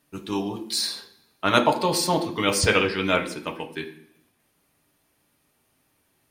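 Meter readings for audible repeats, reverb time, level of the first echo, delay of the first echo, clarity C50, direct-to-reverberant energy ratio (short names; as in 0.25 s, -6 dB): none, 0.65 s, none, none, 11.5 dB, 1.5 dB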